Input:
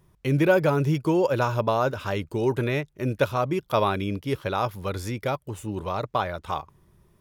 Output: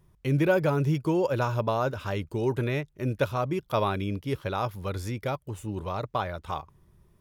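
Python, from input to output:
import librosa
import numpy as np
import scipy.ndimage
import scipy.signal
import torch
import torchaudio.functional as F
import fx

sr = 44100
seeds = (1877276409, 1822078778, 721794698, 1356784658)

y = fx.low_shelf(x, sr, hz=120.0, db=6.0)
y = y * 10.0 ** (-4.0 / 20.0)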